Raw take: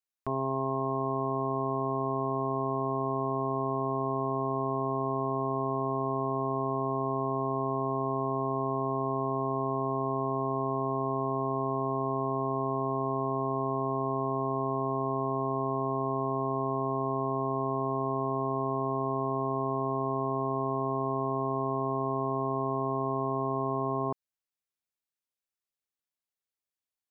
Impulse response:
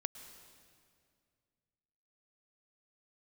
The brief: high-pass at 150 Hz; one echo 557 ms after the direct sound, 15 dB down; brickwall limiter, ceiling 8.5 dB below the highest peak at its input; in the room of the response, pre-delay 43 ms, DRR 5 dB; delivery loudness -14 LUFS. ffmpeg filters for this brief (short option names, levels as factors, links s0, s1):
-filter_complex "[0:a]highpass=150,alimiter=level_in=1.68:limit=0.0631:level=0:latency=1,volume=0.596,aecho=1:1:557:0.178,asplit=2[s0][s1];[1:a]atrim=start_sample=2205,adelay=43[s2];[s1][s2]afir=irnorm=-1:irlink=0,volume=0.631[s3];[s0][s3]amix=inputs=2:normalize=0,volume=15.8"